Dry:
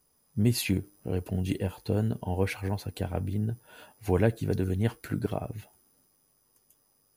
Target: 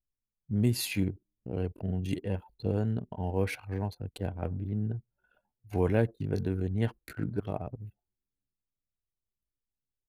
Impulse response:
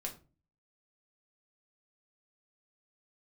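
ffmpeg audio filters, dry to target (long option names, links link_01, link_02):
-af "atempo=0.71,anlmdn=0.251,volume=-2.5dB"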